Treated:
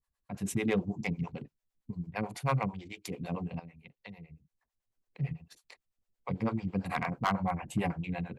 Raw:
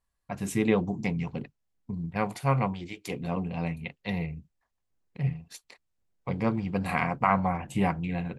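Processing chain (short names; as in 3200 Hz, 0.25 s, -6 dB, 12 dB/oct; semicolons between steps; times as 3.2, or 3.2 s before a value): 3.59–5.2 compressor 6:1, threshold -43 dBFS, peak gain reduction 15.5 dB; harmonic tremolo 9 Hz, depth 100%, crossover 410 Hz; hard clip -21 dBFS, distortion -17 dB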